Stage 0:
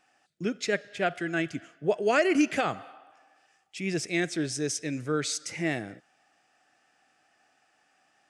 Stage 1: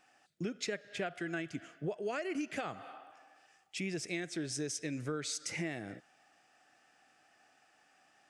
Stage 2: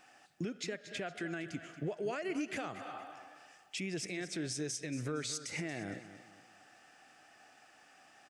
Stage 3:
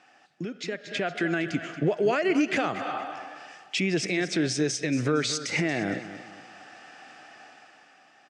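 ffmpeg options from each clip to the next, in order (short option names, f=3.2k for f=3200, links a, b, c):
-af "acompressor=threshold=-34dB:ratio=10"
-af "alimiter=level_in=11dB:limit=-24dB:level=0:latency=1:release=305,volume=-11dB,aecho=1:1:231|462|693|924:0.224|0.0828|0.0306|0.0113,volume=6dB"
-af "dynaudnorm=f=160:g=11:m=10dB,highpass=130,lowpass=5.3k,volume=3.5dB"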